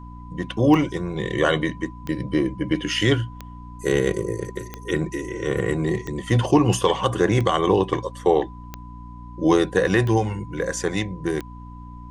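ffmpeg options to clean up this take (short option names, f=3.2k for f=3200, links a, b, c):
-af "adeclick=t=4,bandreject=f=59.4:t=h:w=4,bandreject=f=118.8:t=h:w=4,bandreject=f=178.2:t=h:w=4,bandreject=f=237.6:t=h:w=4,bandreject=f=297:t=h:w=4,bandreject=f=1k:w=30,agate=range=-21dB:threshold=-30dB"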